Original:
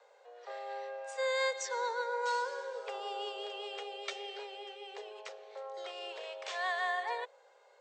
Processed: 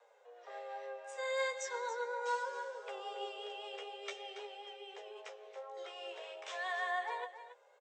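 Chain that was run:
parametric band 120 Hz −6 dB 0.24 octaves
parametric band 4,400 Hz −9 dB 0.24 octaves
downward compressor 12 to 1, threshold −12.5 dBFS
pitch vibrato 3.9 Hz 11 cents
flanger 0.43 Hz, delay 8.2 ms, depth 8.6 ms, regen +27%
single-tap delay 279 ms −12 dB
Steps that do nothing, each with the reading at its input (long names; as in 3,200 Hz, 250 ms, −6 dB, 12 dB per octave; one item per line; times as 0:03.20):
parametric band 120 Hz: nothing at its input below 340 Hz
downward compressor, threshold −12.5 dBFS: peak of its input −22.5 dBFS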